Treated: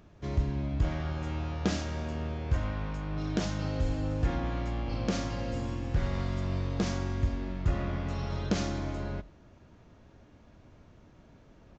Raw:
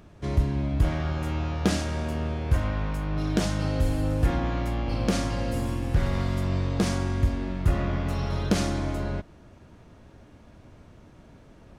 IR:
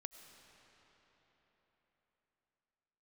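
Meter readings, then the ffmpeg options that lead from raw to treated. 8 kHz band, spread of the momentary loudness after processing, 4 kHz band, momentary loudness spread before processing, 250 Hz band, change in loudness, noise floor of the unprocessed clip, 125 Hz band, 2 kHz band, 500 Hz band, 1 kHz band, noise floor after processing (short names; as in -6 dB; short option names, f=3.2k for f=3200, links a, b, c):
-7.0 dB, 4 LU, -5.5 dB, 4 LU, -5.5 dB, -5.5 dB, -52 dBFS, -5.5 dB, -5.5 dB, -5.5 dB, -5.5 dB, -57 dBFS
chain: -filter_complex "[1:a]atrim=start_sample=2205,atrim=end_sample=4410[a];[0:a][a]afir=irnorm=-1:irlink=0,aresample=16000,aresample=44100"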